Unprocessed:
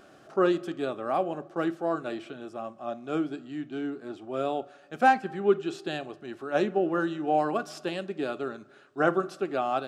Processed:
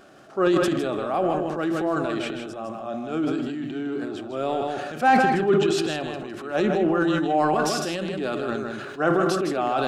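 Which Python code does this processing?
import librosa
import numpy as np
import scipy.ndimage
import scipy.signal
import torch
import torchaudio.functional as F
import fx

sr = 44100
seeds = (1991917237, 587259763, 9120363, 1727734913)

y = fx.transient(x, sr, attack_db=-4, sustain_db=9)
y = y + 10.0 ** (-6.5 / 20.0) * np.pad(y, (int(157 * sr / 1000.0), 0))[:len(y)]
y = fx.sustainer(y, sr, db_per_s=27.0)
y = y * librosa.db_to_amplitude(3.0)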